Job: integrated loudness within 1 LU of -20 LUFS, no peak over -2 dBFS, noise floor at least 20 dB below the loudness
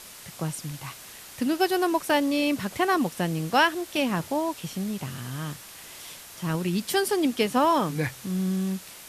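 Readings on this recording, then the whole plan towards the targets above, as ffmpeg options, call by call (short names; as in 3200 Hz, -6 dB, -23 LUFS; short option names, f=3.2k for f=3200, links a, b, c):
noise floor -45 dBFS; noise floor target -47 dBFS; loudness -26.5 LUFS; peak -7.5 dBFS; loudness target -20.0 LUFS
-> -af "afftdn=nr=6:nf=-45"
-af "volume=6.5dB,alimiter=limit=-2dB:level=0:latency=1"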